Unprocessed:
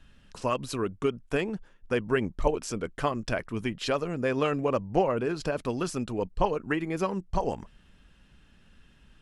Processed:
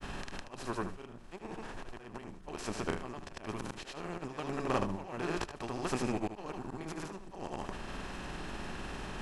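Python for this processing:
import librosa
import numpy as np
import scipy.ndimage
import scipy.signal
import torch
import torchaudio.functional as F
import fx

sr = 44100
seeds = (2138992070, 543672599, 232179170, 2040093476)

y = fx.bin_compress(x, sr, power=0.4)
y = fx.peak_eq(y, sr, hz=490.0, db=-7.0, octaves=0.38)
y = fx.auto_swell(y, sr, attack_ms=524.0)
y = fx.granulator(y, sr, seeds[0], grain_ms=100.0, per_s=20.0, spray_ms=100.0, spread_st=0)
y = y + 10.0 ** (-10.0 / 20.0) * np.pad(y, (int(76 * sr / 1000.0), 0))[:len(y)]
y = y * 10.0 ** (-6.5 / 20.0)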